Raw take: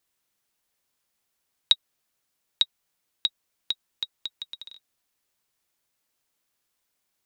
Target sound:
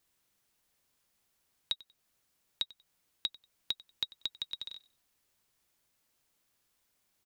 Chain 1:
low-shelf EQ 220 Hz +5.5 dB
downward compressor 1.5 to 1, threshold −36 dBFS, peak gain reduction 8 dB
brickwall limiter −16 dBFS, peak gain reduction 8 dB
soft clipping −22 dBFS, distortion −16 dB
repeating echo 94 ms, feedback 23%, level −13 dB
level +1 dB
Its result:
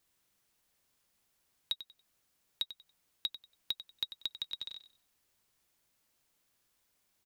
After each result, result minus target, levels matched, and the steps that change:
soft clipping: distortion +10 dB; echo-to-direct +8.5 dB
change: soft clipping −15 dBFS, distortion −26 dB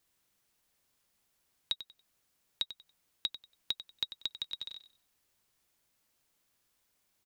echo-to-direct +8.5 dB
change: repeating echo 94 ms, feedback 23%, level −21.5 dB

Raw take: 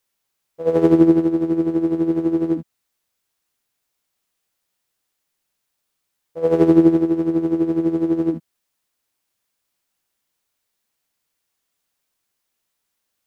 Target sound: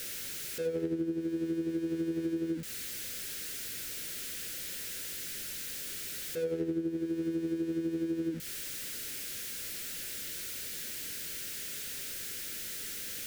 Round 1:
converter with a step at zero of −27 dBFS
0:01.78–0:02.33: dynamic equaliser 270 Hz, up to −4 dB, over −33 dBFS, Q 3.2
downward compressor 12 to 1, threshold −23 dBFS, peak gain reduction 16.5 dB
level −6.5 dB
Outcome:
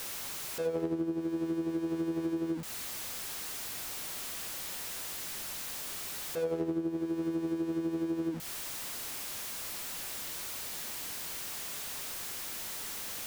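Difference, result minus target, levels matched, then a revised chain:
1,000 Hz band +11.0 dB
converter with a step at zero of −27 dBFS
0:01.78–0:02.33: dynamic equaliser 270 Hz, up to −4 dB, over −33 dBFS, Q 3.2
downward compressor 12 to 1, threshold −23 dBFS, peak gain reduction 16.5 dB
flat-topped bell 880 Hz −15 dB 1.1 octaves
level −6.5 dB

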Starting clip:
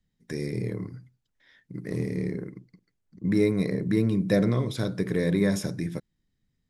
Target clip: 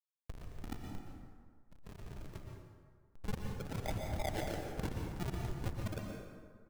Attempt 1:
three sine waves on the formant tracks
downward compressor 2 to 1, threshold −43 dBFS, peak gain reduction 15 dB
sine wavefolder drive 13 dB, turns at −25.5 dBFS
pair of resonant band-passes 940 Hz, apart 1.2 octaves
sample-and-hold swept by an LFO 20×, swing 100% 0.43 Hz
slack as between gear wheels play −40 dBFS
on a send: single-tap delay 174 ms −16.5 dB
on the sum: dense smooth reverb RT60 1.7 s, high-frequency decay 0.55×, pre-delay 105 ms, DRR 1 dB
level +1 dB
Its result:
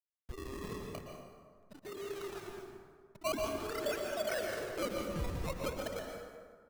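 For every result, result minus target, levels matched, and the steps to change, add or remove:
sample-and-hold swept by an LFO: distortion −23 dB; slack as between gear wheels: distortion −7 dB; downward compressor: peak gain reduction +3 dB
change: sample-and-hold swept by an LFO 56×, swing 100% 0.43 Hz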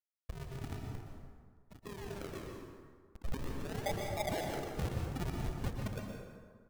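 slack as between gear wheels: distortion −7 dB; downward compressor: peak gain reduction +3 dB
change: slack as between gear wheels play −33 dBFS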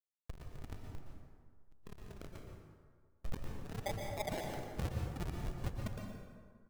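downward compressor: peak gain reduction +3 dB
change: downward compressor 2 to 1, threshold −36.5 dBFS, peak gain reduction 12 dB

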